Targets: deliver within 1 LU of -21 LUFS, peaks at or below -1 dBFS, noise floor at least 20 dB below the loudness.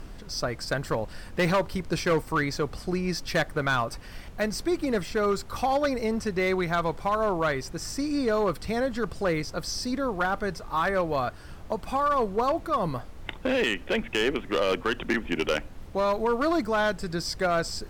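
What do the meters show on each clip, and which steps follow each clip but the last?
clipped 1.3%; flat tops at -18.5 dBFS; noise floor -43 dBFS; noise floor target -48 dBFS; loudness -27.5 LUFS; peak -18.5 dBFS; loudness target -21.0 LUFS
-> clip repair -18.5 dBFS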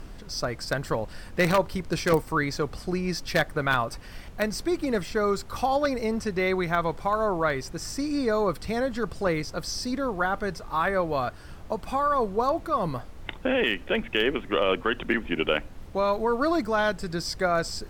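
clipped 0.0%; noise floor -43 dBFS; noise floor target -47 dBFS
-> noise print and reduce 6 dB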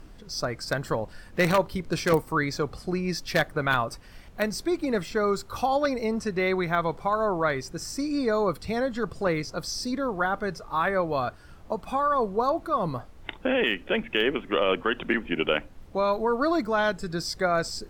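noise floor -48 dBFS; loudness -27.0 LUFS; peak -9.5 dBFS; loudness target -21.0 LUFS
-> gain +6 dB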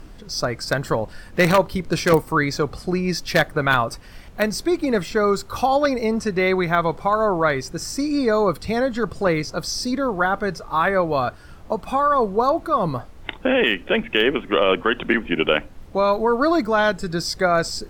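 loudness -21.0 LUFS; peak -3.5 dBFS; noise floor -42 dBFS

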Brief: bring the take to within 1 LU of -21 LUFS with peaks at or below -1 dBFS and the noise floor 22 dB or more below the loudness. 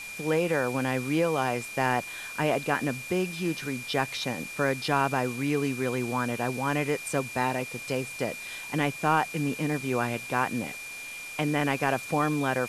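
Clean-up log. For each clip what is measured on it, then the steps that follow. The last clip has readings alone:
steady tone 2400 Hz; tone level -38 dBFS; noise floor -40 dBFS; noise floor target -51 dBFS; loudness -28.5 LUFS; peak -10.5 dBFS; loudness target -21.0 LUFS
-> notch 2400 Hz, Q 30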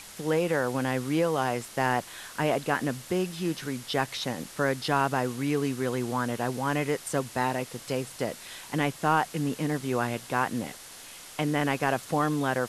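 steady tone none; noise floor -46 dBFS; noise floor target -51 dBFS
-> denoiser 6 dB, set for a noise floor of -46 dBFS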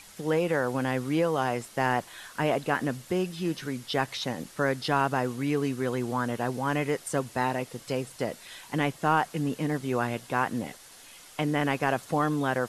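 noise floor -50 dBFS; noise floor target -51 dBFS
-> denoiser 6 dB, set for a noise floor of -50 dBFS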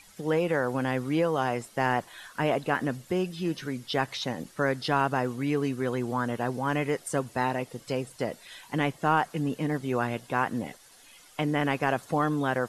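noise floor -54 dBFS; loudness -29.0 LUFS; peak -11.0 dBFS; loudness target -21.0 LUFS
-> gain +8 dB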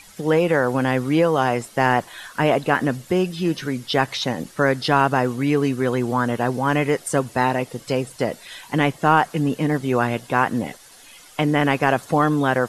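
loudness -21.0 LUFS; peak -3.0 dBFS; noise floor -46 dBFS

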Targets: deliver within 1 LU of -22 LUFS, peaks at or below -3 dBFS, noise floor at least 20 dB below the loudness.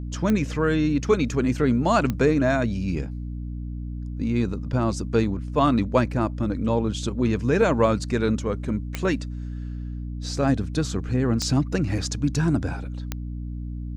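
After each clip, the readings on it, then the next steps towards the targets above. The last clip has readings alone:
clicks 5; hum 60 Hz; harmonics up to 300 Hz; hum level -29 dBFS; loudness -24.5 LUFS; peak -7.0 dBFS; loudness target -22.0 LUFS
-> de-click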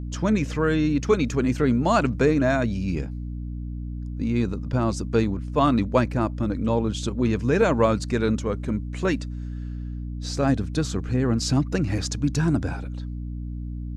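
clicks 0; hum 60 Hz; harmonics up to 300 Hz; hum level -29 dBFS
-> notches 60/120/180/240/300 Hz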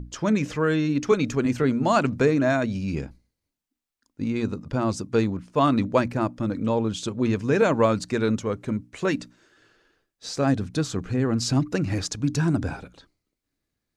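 hum none; loudness -24.5 LUFS; peak -7.0 dBFS; loudness target -22.0 LUFS
-> gain +2.5 dB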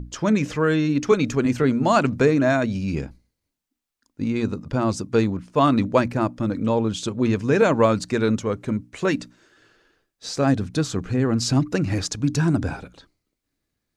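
loudness -22.0 LUFS; peak -4.5 dBFS; noise floor -81 dBFS

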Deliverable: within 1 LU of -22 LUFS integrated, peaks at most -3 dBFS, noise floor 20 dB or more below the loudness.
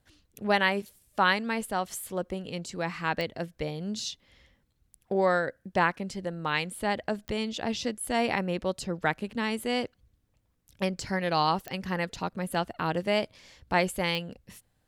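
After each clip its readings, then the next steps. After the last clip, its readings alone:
clicks 4; loudness -30.0 LUFS; peak -10.0 dBFS; loudness target -22.0 LUFS
-> de-click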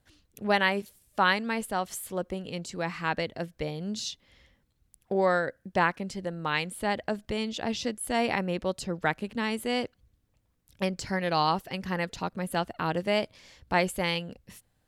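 clicks 0; loudness -30.0 LUFS; peak -10.0 dBFS; loudness target -22.0 LUFS
-> gain +8 dB; limiter -3 dBFS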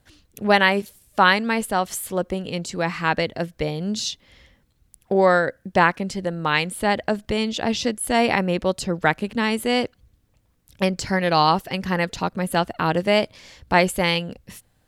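loudness -22.0 LUFS; peak -3.0 dBFS; noise floor -64 dBFS

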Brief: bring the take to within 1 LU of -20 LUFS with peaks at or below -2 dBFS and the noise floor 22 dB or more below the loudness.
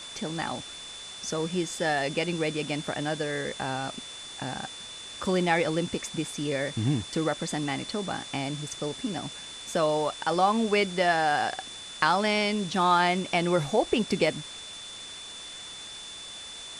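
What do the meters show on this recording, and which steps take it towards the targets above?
steady tone 3500 Hz; tone level -41 dBFS; noise floor -42 dBFS; noise floor target -51 dBFS; loudness -28.5 LUFS; peak -9.0 dBFS; loudness target -20.0 LUFS
-> notch 3500 Hz, Q 30; denoiser 9 dB, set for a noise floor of -42 dBFS; gain +8.5 dB; limiter -2 dBFS

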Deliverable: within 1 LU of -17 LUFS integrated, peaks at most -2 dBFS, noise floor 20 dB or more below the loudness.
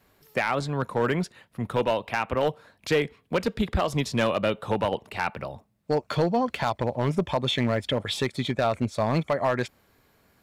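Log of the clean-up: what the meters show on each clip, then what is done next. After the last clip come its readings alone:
clipped 0.9%; flat tops at -16.0 dBFS; loudness -27.0 LUFS; peak -16.0 dBFS; loudness target -17.0 LUFS
-> clip repair -16 dBFS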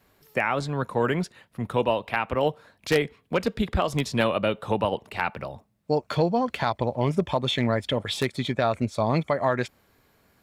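clipped 0.0%; loudness -26.5 LUFS; peak -7.0 dBFS; loudness target -17.0 LUFS
-> gain +9.5 dB; limiter -2 dBFS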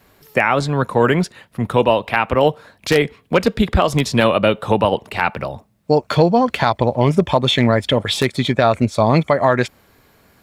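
loudness -17.0 LUFS; peak -2.0 dBFS; noise floor -56 dBFS

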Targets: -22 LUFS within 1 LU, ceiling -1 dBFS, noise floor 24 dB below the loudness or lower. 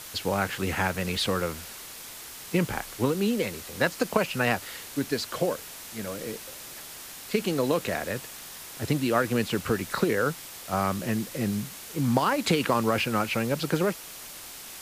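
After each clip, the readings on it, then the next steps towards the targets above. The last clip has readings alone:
noise floor -43 dBFS; noise floor target -52 dBFS; loudness -28.0 LUFS; peak -8.5 dBFS; loudness target -22.0 LUFS
-> denoiser 9 dB, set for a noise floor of -43 dBFS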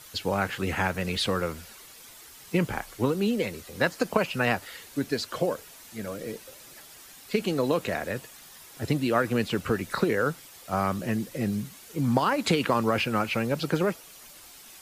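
noise floor -49 dBFS; noise floor target -52 dBFS
-> denoiser 6 dB, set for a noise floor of -49 dBFS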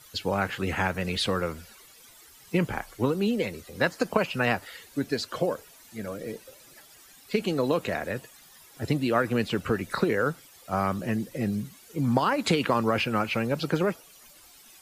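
noise floor -53 dBFS; loudness -28.0 LUFS; peak -8.5 dBFS; loudness target -22.0 LUFS
-> gain +6 dB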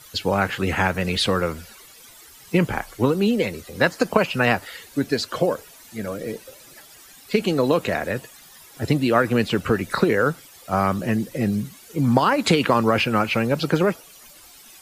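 loudness -22.0 LUFS; peak -2.5 dBFS; noise floor -47 dBFS

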